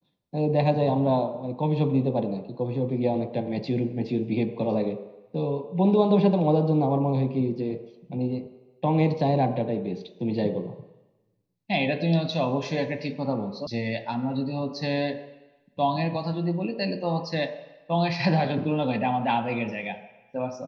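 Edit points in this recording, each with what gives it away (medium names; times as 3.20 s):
13.67 s: sound stops dead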